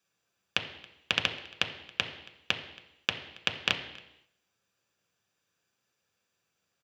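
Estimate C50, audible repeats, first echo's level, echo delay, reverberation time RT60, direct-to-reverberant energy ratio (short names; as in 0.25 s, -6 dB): 9.5 dB, 1, -23.5 dB, 0.276 s, 0.90 s, 3.5 dB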